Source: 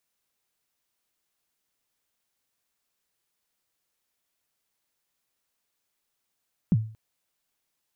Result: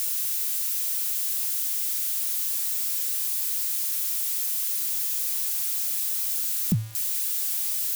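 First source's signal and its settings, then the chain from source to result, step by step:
kick drum length 0.23 s, from 220 Hz, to 110 Hz, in 38 ms, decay 0.42 s, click off, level -14 dB
switching spikes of -23.5 dBFS

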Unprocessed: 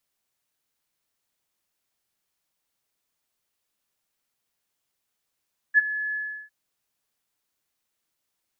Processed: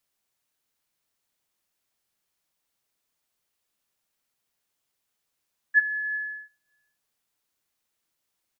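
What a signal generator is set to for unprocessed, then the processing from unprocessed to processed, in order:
ADSR sine 1710 Hz, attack 41 ms, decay 22 ms, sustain -15 dB, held 0.40 s, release 0.354 s -11 dBFS
feedback echo 0.123 s, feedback 59%, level -22 dB

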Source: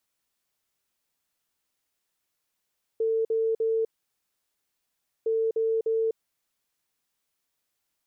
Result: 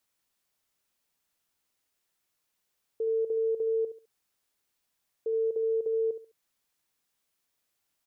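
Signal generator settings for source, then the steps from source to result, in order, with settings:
beep pattern sine 448 Hz, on 0.25 s, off 0.05 s, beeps 3, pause 1.41 s, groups 2, -22 dBFS
limiter -26 dBFS; on a send: feedback echo 69 ms, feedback 28%, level -11.5 dB

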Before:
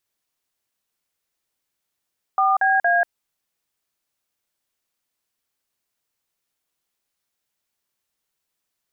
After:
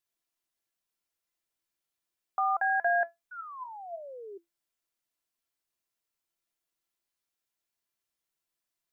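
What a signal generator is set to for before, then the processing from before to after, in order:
DTMF "4BA", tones 0.188 s, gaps 44 ms, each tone -17.5 dBFS
painted sound fall, 3.31–4.38, 380–1500 Hz -34 dBFS; resonator 340 Hz, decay 0.17 s, harmonics all, mix 70%

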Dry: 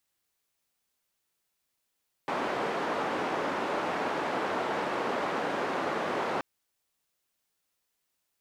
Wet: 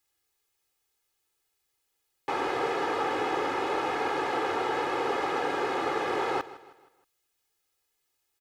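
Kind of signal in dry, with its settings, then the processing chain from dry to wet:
noise band 270–1000 Hz, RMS -31 dBFS 4.13 s
comb 2.4 ms, depth 73%; feedback echo 0.158 s, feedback 43%, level -17 dB

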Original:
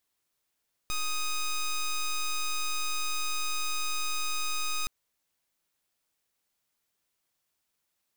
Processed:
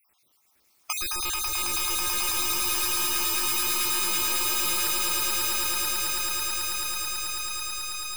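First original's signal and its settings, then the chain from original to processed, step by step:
pulse 1250 Hz, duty 10% -29.5 dBFS 3.97 s
random spectral dropouts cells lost 68%; swelling echo 0.109 s, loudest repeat 8, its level -4.5 dB; spectral compressor 4:1

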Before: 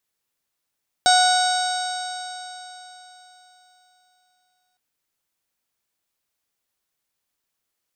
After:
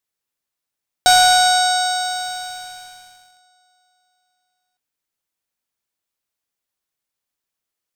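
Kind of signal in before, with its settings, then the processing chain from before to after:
stretched partials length 3.71 s, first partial 731 Hz, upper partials -6/-20/-20/-5/-11/-10.5/-14/-20/-9 dB, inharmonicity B 0.0031, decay 3.75 s, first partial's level -14 dB
sample leveller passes 2

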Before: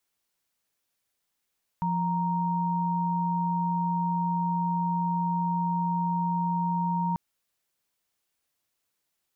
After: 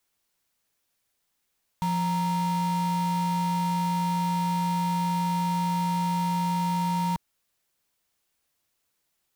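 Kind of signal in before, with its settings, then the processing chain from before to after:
chord F3/A#5 sine, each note -27 dBFS 5.34 s
low shelf 100 Hz +3.5 dB; in parallel at -6 dB: wrapped overs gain 30 dB

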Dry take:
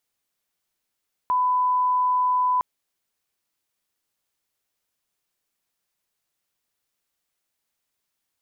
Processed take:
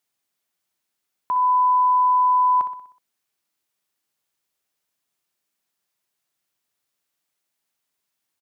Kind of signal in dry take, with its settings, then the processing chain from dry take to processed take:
line-up tone -18 dBFS 1.31 s
HPF 100 Hz 12 dB/oct; notch 490 Hz, Q 12; feedback echo 62 ms, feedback 52%, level -10.5 dB

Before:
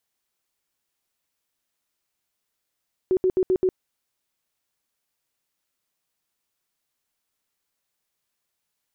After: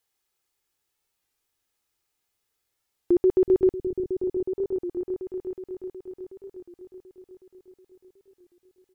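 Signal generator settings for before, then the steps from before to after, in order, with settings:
tone bursts 372 Hz, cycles 22, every 0.13 s, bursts 5, -16.5 dBFS
comb 2.4 ms, depth 40%; on a send: repeats that get brighter 0.368 s, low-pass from 200 Hz, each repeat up 1 oct, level -3 dB; on the sum: record warp 33 1/3 rpm, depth 100 cents

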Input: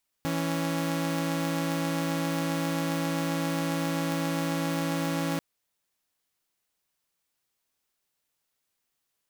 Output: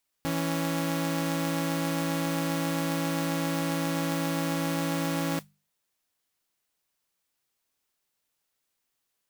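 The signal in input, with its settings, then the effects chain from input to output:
chord E3/C#4 saw, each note -27 dBFS 5.14 s
notches 50/100/150/200 Hz; modulation noise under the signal 16 dB

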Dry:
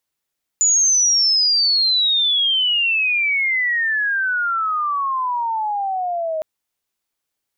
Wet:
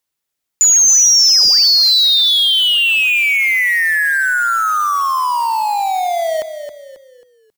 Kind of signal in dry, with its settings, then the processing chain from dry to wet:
chirp logarithmic 7000 Hz -> 620 Hz -12 dBFS -> -20 dBFS 5.81 s
high shelf 3600 Hz +2 dB; in parallel at -5 dB: bit-crush 4-bit; on the sum: frequency-shifting echo 0.27 s, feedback 39%, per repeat -47 Hz, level -10 dB

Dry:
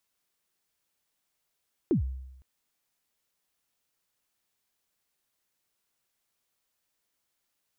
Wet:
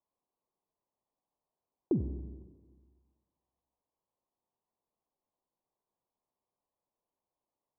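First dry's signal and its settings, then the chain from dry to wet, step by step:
kick drum length 0.51 s, from 400 Hz, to 65 Hz, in 0.113 s, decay 0.91 s, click off, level -19 dB
steep low-pass 1100 Hz 72 dB/oct; low shelf 210 Hz -6.5 dB; Schroeder reverb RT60 1.5 s, combs from 31 ms, DRR 9 dB

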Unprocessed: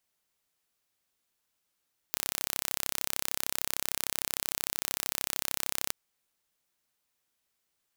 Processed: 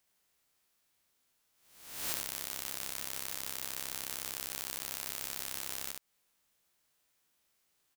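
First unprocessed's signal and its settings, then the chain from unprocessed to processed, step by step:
pulse train 33.2/s, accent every 0, -3 dBFS 3.77 s
spectral swells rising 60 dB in 0.78 s; compressor 6:1, threshold -33 dBFS; on a send: echo 72 ms -4 dB

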